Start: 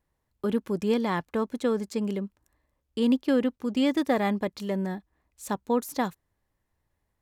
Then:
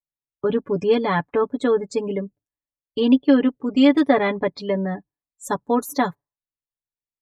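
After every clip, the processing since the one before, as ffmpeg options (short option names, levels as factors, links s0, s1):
-af "afftdn=nr=35:nf=-44,aecho=1:1:7:0.86,volume=1.78"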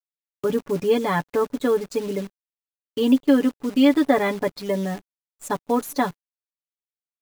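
-af "acrusher=bits=7:dc=4:mix=0:aa=0.000001,volume=0.841"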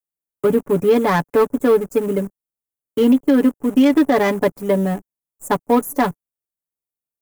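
-filter_complex "[0:a]acrossover=split=200|7500[s0][s1][s2];[s1]adynamicsmooth=sensitivity=2:basefreq=800[s3];[s0][s3][s2]amix=inputs=3:normalize=0,alimiter=level_in=4.22:limit=0.891:release=50:level=0:latency=1,volume=0.531"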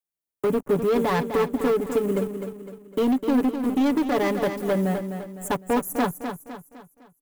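-filter_complex "[0:a]asplit=2[s0][s1];[s1]acompressor=threshold=0.0794:ratio=6,volume=1.19[s2];[s0][s2]amix=inputs=2:normalize=0,volume=3.16,asoftclip=hard,volume=0.316,aecho=1:1:254|508|762|1016|1270:0.398|0.171|0.0736|0.0317|0.0136,volume=0.398"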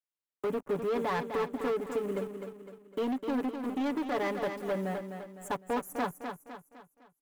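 -filter_complex "[0:a]asplit=2[s0][s1];[s1]highpass=f=720:p=1,volume=2.51,asoftclip=type=tanh:threshold=0.211[s2];[s0][s2]amix=inputs=2:normalize=0,lowpass=f=3400:p=1,volume=0.501,volume=0.398"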